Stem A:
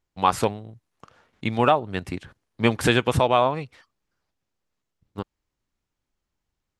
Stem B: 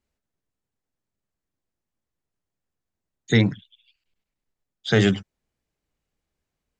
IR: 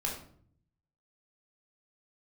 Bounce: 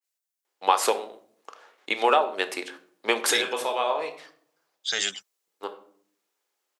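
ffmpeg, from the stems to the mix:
-filter_complex "[0:a]acompressor=threshold=-20dB:ratio=6,highpass=frequency=400:width=0.5412,highpass=frequency=400:width=1.3066,adelay=450,volume=2.5dB,asplit=2[link_01][link_02];[link_02]volume=-9.5dB[link_03];[1:a]crystalizer=i=7.5:c=0,highpass=580,volume=-13dB,asplit=2[link_04][link_05];[link_05]apad=whole_len=319493[link_06];[link_01][link_06]sidechaincompress=threshold=-38dB:ratio=8:attack=9.2:release=829[link_07];[2:a]atrim=start_sample=2205[link_08];[link_03][link_08]afir=irnorm=-1:irlink=0[link_09];[link_07][link_04][link_09]amix=inputs=3:normalize=0,adynamicequalizer=threshold=0.0126:dfrequency=2900:dqfactor=0.7:tfrequency=2900:tqfactor=0.7:attack=5:release=100:ratio=0.375:range=2.5:mode=boostabove:tftype=highshelf"

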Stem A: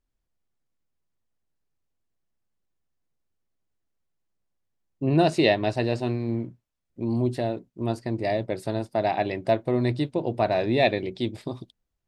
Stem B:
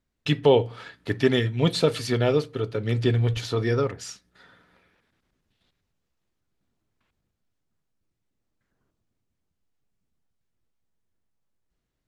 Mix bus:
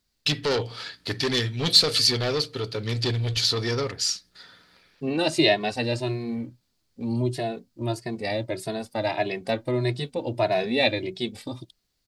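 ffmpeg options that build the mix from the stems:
ffmpeg -i stem1.wav -i stem2.wav -filter_complex "[0:a]asplit=2[link_01][link_02];[link_02]adelay=2.3,afreqshift=1.6[link_03];[link_01][link_03]amix=inputs=2:normalize=1,volume=1dB[link_04];[1:a]asoftclip=type=tanh:threshold=-20.5dB,equalizer=frequency=4600:width_type=o:width=0.52:gain=11.5,volume=-1dB[link_05];[link_04][link_05]amix=inputs=2:normalize=0,highshelf=frequency=2300:gain=10" out.wav

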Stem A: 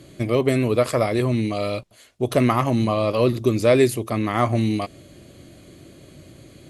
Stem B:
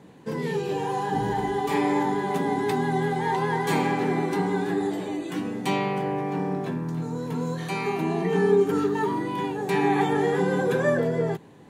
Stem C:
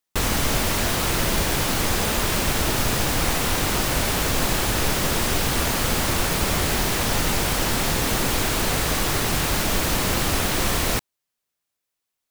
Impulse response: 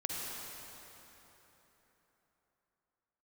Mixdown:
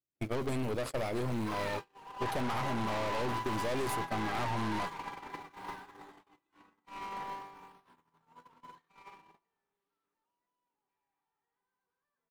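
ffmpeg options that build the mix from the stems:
-filter_complex "[0:a]volume=-0.5dB[link_01];[1:a]lowshelf=frequency=770:width_type=q:width=3:gain=-8,bandreject=frequency=1700:width=16,asplit=2[link_02][link_03];[link_03]highpass=frequency=720:poles=1,volume=31dB,asoftclip=type=tanh:threshold=-13.5dB[link_04];[link_02][link_04]amix=inputs=2:normalize=0,lowpass=frequency=1600:poles=1,volume=-6dB,adelay=1200,volume=-6.5dB,afade=type=out:start_time=8.94:duration=0.76:silence=0.421697,asplit=2[link_05][link_06];[link_06]volume=-11dB[link_07];[2:a]acrusher=samples=29:mix=1:aa=0.000001:lfo=1:lforange=46.4:lforate=0.48,highpass=230,volume=-17dB,asplit=2[link_08][link_09];[link_09]volume=-9.5dB[link_10];[3:a]atrim=start_sample=2205[link_11];[link_07][link_10]amix=inputs=2:normalize=0[link_12];[link_12][link_11]afir=irnorm=-1:irlink=0[link_13];[link_01][link_05][link_08][link_13]amix=inputs=4:normalize=0,agate=range=-54dB:threshold=-22dB:ratio=16:detection=peak,aeval=exprs='(tanh(17.8*val(0)+0.5)-tanh(0.5))/17.8':channel_layout=same,acompressor=threshold=-31dB:ratio=5"

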